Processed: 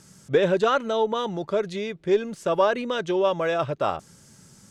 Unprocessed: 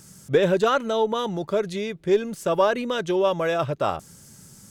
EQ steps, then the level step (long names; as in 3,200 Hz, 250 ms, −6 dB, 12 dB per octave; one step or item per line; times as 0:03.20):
high-frequency loss of the air 51 metres
low-shelf EQ 200 Hz −4.5 dB
0.0 dB